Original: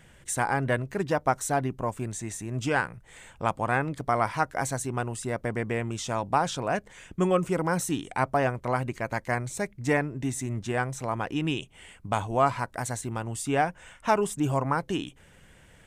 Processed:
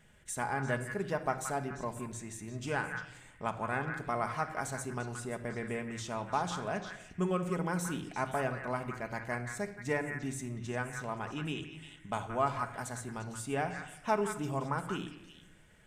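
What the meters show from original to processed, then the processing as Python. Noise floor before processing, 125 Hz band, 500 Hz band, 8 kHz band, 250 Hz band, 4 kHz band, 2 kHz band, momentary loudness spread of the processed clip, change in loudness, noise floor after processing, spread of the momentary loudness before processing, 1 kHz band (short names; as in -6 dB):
-56 dBFS, -8.0 dB, -7.5 dB, -8.0 dB, -7.5 dB, -7.5 dB, -6.0 dB, 8 LU, -7.5 dB, -58 dBFS, 7 LU, -8.0 dB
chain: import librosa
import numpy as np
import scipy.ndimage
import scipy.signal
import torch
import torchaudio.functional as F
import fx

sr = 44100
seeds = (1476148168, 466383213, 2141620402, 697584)

p1 = x + fx.echo_stepped(x, sr, ms=174, hz=1600.0, octaves=1.4, feedback_pct=70, wet_db=-3.5, dry=0)
p2 = fx.room_shoebox(p1, sr, seeds[0], volume_m3=3200.0, walls='furnished', distance_m=1.4)
y = p2 * librosa.db_to_amplitude(-9.0)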